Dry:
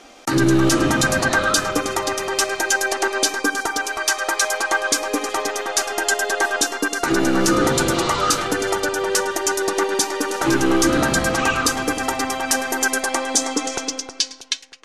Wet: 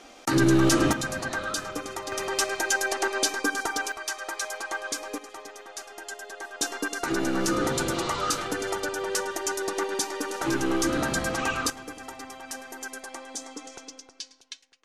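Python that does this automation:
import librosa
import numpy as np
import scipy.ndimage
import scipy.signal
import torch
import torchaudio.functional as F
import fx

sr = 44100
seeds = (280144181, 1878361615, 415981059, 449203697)

y = fx.gain(x, sr, db=fx.steps((0.0, -4.0), (0.93, -12.5), (2.12, -6.0), (3.92, -12.5), (5.18, -19.0), (6.61, -8.5), (11.7, -18.0)))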